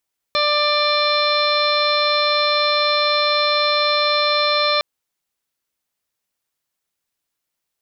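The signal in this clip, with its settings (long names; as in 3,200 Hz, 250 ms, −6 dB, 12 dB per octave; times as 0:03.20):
steady harmonic partials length 4.46 s, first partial 592 Hz, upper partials 0/−9/−3/−18/−3/−1.5/−18.5/−10 dB, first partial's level −20.5 dB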